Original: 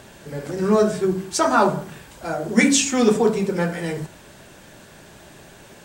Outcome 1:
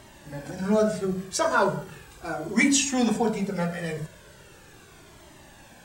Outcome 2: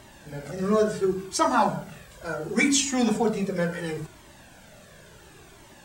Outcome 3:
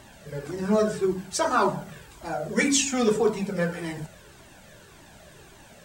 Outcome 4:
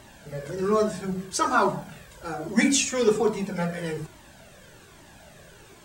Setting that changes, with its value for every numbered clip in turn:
cascading flanger, rate: 0.38, 0.71, 1.8, 1.2 Hz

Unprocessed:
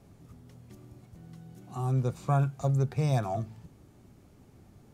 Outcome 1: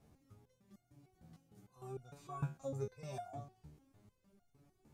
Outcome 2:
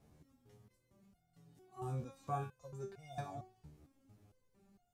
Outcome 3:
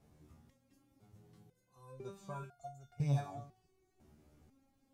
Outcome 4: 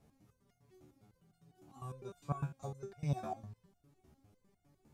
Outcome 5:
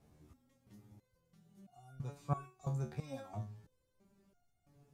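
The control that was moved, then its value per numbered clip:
stepped resonator, rate: 6.6, 4.4, 2, 9.9, 3 Hz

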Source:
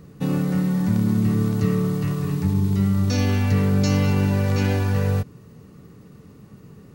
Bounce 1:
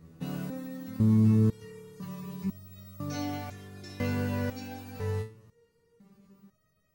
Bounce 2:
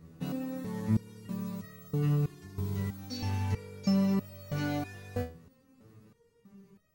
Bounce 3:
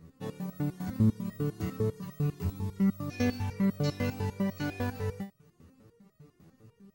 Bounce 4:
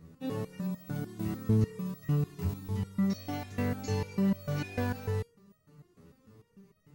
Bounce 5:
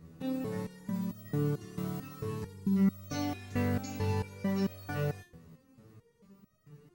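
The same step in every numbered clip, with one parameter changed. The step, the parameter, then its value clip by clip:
stepped resonator, rate: 2, 3.1, 10, 6.7, 4.5 Hz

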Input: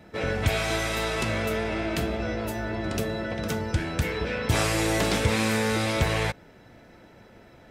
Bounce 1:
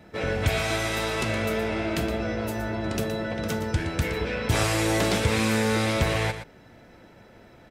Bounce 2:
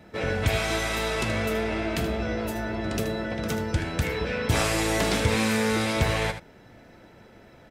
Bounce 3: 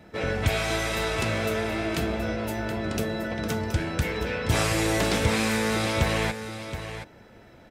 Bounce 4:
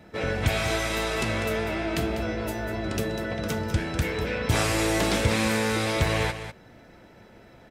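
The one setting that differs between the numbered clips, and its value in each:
echo, time: 118, 77, 723, 197 ms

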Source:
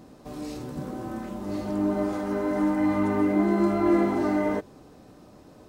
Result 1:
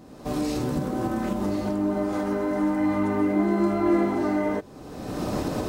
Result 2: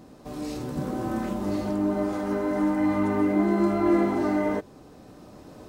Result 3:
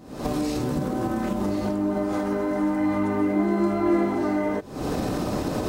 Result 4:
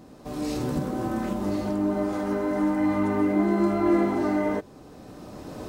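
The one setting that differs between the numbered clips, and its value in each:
recorder AGC, rising by: 35, 5.1, 91, 13 dB/s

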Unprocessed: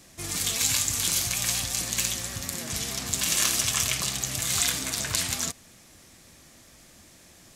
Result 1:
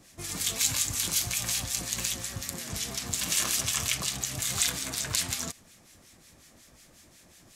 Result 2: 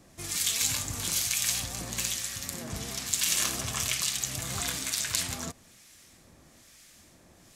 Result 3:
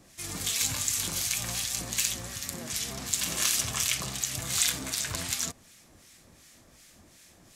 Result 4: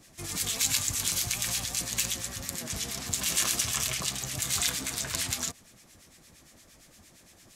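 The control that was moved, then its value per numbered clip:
harmonic tremolo, rate: 5.5, 1.1, 2.7, 8.7 Hz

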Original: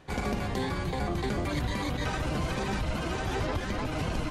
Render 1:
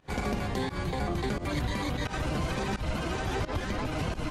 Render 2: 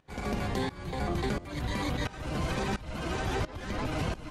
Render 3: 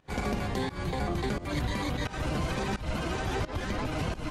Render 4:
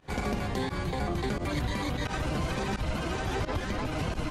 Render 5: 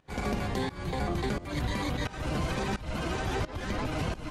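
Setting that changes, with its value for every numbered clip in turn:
pump, release: 114, 529, 203, 68, 326 ms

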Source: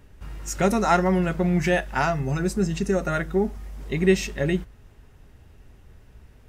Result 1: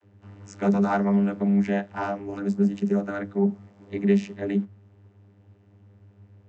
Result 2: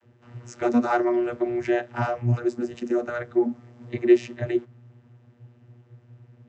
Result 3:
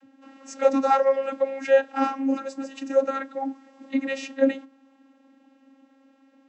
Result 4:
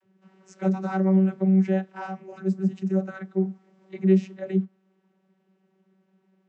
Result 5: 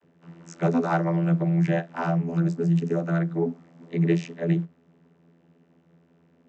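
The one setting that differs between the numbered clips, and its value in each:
vocoder, frequency: 100, 120, 270, 190, 84 Hz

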